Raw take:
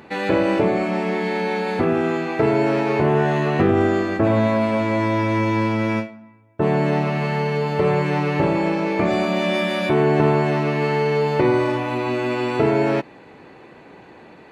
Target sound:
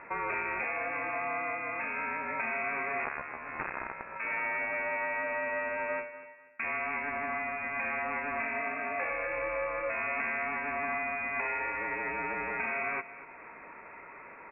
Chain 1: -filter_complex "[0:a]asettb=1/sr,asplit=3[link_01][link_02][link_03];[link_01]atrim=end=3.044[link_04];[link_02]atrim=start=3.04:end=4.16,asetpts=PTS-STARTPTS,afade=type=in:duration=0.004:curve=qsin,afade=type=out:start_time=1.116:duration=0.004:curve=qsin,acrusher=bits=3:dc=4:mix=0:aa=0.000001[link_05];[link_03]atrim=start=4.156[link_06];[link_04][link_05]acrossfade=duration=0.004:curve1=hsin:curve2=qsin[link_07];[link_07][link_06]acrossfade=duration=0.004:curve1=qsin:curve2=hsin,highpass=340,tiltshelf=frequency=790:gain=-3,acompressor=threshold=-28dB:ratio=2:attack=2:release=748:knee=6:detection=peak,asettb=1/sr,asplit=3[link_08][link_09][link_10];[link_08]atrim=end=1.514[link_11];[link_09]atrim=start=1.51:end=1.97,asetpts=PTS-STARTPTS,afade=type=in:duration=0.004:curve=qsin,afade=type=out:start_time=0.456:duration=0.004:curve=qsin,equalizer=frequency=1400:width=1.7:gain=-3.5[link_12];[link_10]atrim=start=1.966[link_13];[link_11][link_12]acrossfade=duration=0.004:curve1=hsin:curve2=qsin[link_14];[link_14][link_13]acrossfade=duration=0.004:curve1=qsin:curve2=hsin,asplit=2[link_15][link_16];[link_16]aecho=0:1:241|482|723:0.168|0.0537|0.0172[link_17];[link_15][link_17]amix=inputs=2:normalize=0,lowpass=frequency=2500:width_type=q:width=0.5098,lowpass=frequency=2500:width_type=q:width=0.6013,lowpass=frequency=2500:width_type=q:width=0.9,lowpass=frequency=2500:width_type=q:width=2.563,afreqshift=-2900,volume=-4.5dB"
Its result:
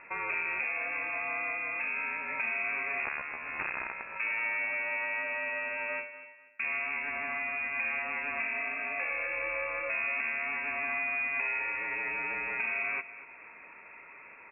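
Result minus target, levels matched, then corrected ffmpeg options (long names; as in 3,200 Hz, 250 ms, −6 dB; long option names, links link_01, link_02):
1,000 Hz band −6.0 dB
-filter_complex "[0:a]asettb=1/sr,asplit=3[link_01][link_02][link_03];[link_01]atrim=end=3.044[link_04];[link_02]atrim=start=3.04:end=4.16,asetpts=PTS-STARTPTS,afade=type=in:duration=0.004:curve=qsin,afade=type=out:start_time=1.116:duration=0.004:curve=qsin,acrusher=bits=3:dc=4:mix=0:aa=0.000001[link_05];[link_03]atrim=start=4.156[link_06];[link_04][link_05]acrossfade=duration=0.004:curve1=hsin:curve2=qsin[link_07];[link_07][link_06]acrossfade=duration=0.004:curve1=qsin:curve2=hsin,highpass=340,tiltshelf=frequency=790:gain=-13,acompressor=threshold=-28dB:ratio=2:attack=2:release=748:knee=6:detection=peak,asettb=1/sr,asplit=3[link_08][link_09][link_10];[link_08]atrim=end=1.514[link_11];[link_09]atrim=start=1.51:end=1.97,asetpts=PTS-STARTPTS,afade=type=in:duration=0.004:curve=qsin,afade=type=out:start_time=0.456:duration=0.004:curve=qsin,equalizer=frequency=1400:width=1.7:gain=-3.5[link_12];[link_10]atrim=start=1.966[link_13];[link_11][link_12]acrossfade=duration=0.004:curve1=hsin:curve2=qsin[link_14];[link_14][link_13]acrossfade=duration=0.004:curve1=qsin:curve2=hsin,asplit=2[link_15][link_16];[link_16]aecho=0:1:241|482|723:0.168|0.0537|0.0172[link_17];[link_15][link_17]amix=inputs=2:normalize=0,lowpass=frequency=2500:width_type=q:width=0.5098,lowpass=frequency=2500:width_type=q:width=0.6013,lowpass=frequency=2500:width_type=q:width=0.9,lowpass=frequency=2500:width_type=q:width=2.563,afreqshift=-2900,volume=-4.5dB"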